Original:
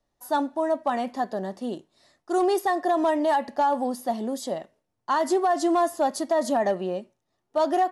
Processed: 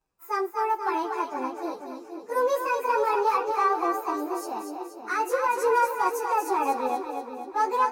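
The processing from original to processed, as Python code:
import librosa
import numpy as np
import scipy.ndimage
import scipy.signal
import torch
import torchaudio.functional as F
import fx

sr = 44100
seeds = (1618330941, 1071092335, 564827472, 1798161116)

y = fx.pitch_bins(x, sr, semitones=5.5)
y = fx.echo_split(y, sr, split_hz=550.0, low_ms=485, high_ms=239, feedback_pct=52, wet_db=-5.5)
y = fx.cheby_harmonics(y, sr, harmonics=(2, 7), levels_db=(-34, -42), full_scale_db=-11.0)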